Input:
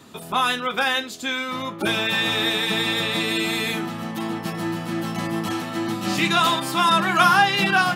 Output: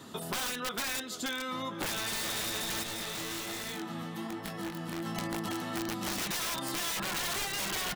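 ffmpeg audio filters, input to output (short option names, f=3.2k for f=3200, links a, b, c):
-filter_complex "[0:a]bandreject=f=2.4k:w=7.8,aecho=1:1:462|924:0.0891|0.0294,alimiter=limit=-11.5dB:level=0:latency=1:release=203,highpass=f=53:p=1,aeval=exprs='(mod(7.94*val(0)+1,2)-1)/7.94':c=same,acompressor=threshold=-32dB:ratio=5,asettb=1/sr,asplit=3[a][b][c];[a]atrim=end=2.834[d];[b]atrim=start=2.83:end=5.06,asetpts=PTS-STARTPTS,afade=t=in:d=0.004:c=qsin,afade=t=out:st=2.226:d=0.004:c=qsin,flanger=delay=19.5:depth=5.2:speed=1.2[e];[c]atrim=start=5.056[f];[d][e]acrossfade=d=0.004:c1=hsin:c2=qsin[g];[g][f]acrossfade=d=0.004:c1=qsin:c2=hsin,volume=-1dB"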